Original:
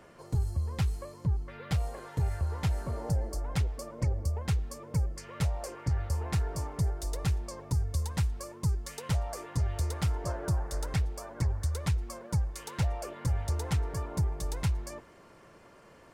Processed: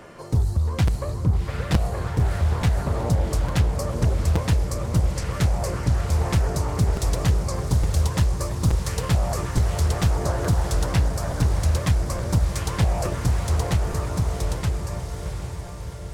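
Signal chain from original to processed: ending faded out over 3.07 s; in parallel at -3 dB: limiter -29 dBFS, peak gain reduction 9 dB; on the sum: diffused feedback echo 0.739 s, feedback 63%, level -7 dB; on a send at -16.5 dB: reverb RT60 1.0 s, pre-delay 4 ms; on the sum: crackling interface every 0.87 s, samples 256, repeat, from 0.87; Doppler distortion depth 0.7 ms; gain +6 dB

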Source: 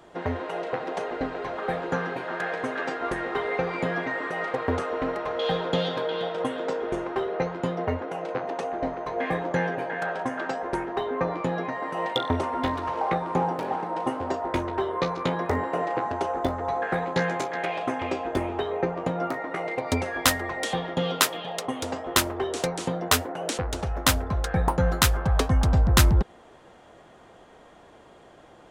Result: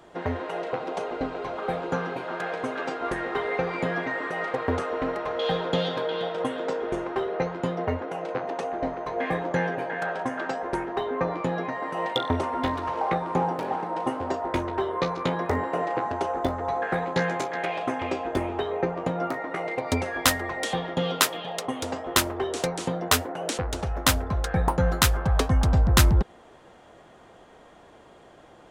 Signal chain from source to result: 0.71–3.06 bell 1800 Hz -8.5 dB 0.24 oct

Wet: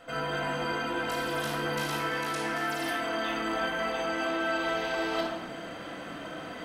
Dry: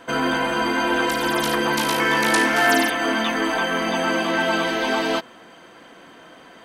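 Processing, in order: reverse; compressor 10:1, threshold -33 dBFS, peak gain reduction 19.5 dB; reverse; shoebox room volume 3400 m³, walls furnished, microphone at 6.6 m; gain -1 dB

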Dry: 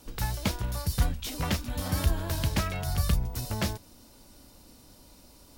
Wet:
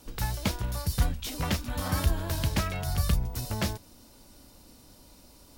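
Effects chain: 1.59–2 dynamic EQ 1200 Hz, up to +6 dB, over -52 dBFS, Q 1.2

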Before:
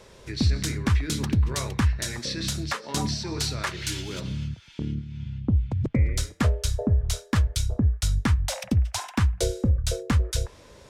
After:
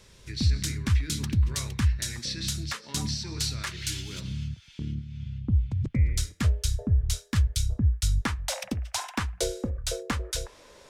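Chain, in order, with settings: bell 610 Hz -12.5 dB 2.5 oct, from 8.21 s 97 Hz

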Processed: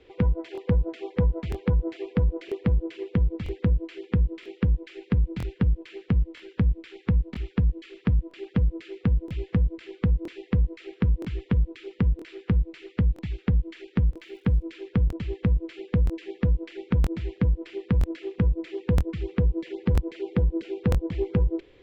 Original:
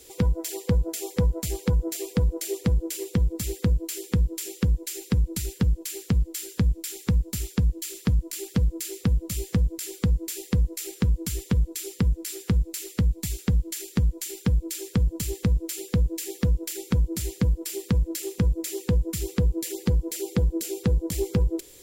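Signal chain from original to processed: LPF 2800 Hz 24 dB/oct; 14.14–14.61 crackle 160/s -54 dBFS; crackling interface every 0.97 s, samples 1024, repeat, from 0.53

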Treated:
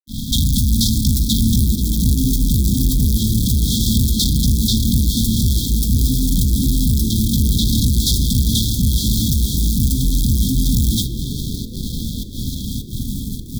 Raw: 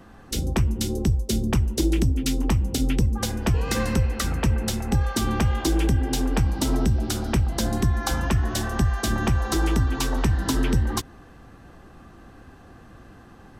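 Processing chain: in parallel at +1 dB: negative-ratio compressor -22 dBFS; on the sum: LFO low-pass sine 0.28 Hz 810–4600 Hz; pump 103 bpm, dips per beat 1, -24 dB, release 0.204 s; modulation noise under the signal 18 dB; fuzz box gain 38 dB, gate -41 dBFS; brick-wall FIR band-stop 280–3200 Hz; frequency-shifting echo 0.405 s, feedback 43%, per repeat +79 Hz, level -17 dB; on a send at -11 dB: reverb RT60 2.1 s, pre-delay 3 ms

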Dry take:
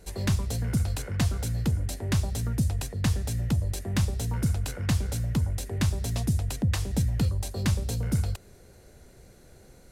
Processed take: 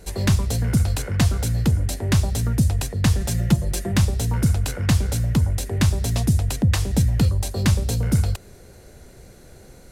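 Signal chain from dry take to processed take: 3.2–3.92 comb 5.7 ms, depth 78%; gain +7 dB

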